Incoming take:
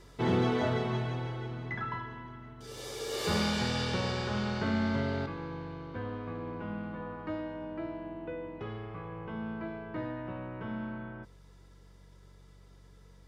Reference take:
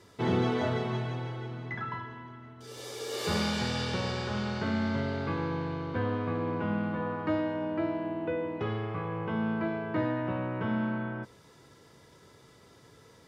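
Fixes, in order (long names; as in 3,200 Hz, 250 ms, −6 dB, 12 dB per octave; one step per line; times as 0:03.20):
clipped peaks rebuilt −20.5 dBFS
hum removal 47.1 Hz, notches 4
level correction +7.5 dB, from 0:05.26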